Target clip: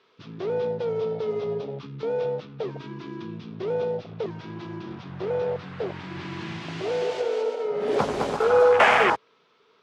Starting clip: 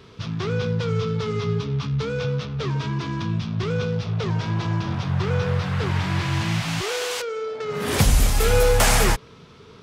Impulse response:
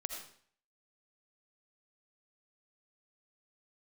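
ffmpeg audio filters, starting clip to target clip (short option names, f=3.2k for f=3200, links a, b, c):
-filter_complex "[0:a]afwtdn=0.0708,highpass=460,lowpass=4.5k,asettb=1/sr,asplit=3[a][b][c];[a]atrim=end=5.964[d];[b]atrim=start=5.96:end=8.37,asetpts=PTS-STARTPTS,afade=t=in:d=0.004:c=qsin,afade=t=out:st=2.406:d=0.004:c=qsin,aecho=1:1:210|336|411.6|457|484.2:0.631|0.398|0.251|0.158|0.1,atrim=end_sample=106281[e];[c]atrim=start=8.366[f];[d][e]acrossfade=d=0.004:c1=hsin:c2=qsin[g];[g][f]acrossfade=d=0.004:c1=qsin:c2=hsin,volume=5.5dB"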